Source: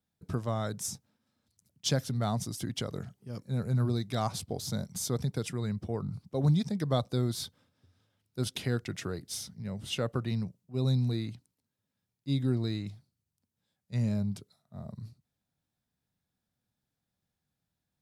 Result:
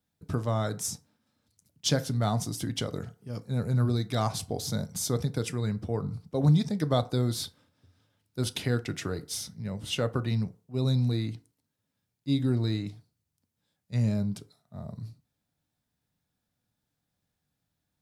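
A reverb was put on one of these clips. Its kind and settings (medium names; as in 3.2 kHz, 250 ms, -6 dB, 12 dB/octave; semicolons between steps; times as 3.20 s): FDN reverb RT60 0.4 s, low-frequency decay 0.7×, high-frequency decay 0.55×, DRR 10.5 dB; trim +3 dB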